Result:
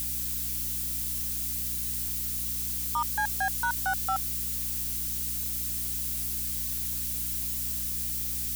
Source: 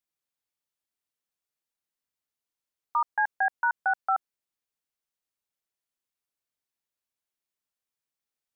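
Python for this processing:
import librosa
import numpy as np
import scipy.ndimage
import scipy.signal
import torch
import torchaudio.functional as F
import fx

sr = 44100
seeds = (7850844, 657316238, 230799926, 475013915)

y = x + 0.5 * 10.0 ** (-23.5 / 20.0) * np.diff(np.sign(x), prepend=np.sign(x[:1]))
y = fx.add_hum(y, sr, base_hz=60, snr_db=10)
y = y * librosa.db_to_amplitude(-3.5)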